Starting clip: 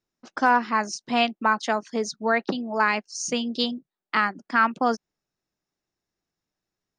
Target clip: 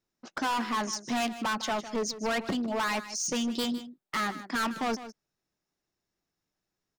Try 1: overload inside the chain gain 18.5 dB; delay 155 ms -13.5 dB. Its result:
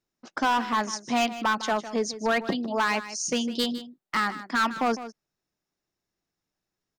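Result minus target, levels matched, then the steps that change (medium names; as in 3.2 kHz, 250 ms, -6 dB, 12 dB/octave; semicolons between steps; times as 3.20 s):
overload inside the chain: distortion -6 dB
change: overload inside the chain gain 26.5 dB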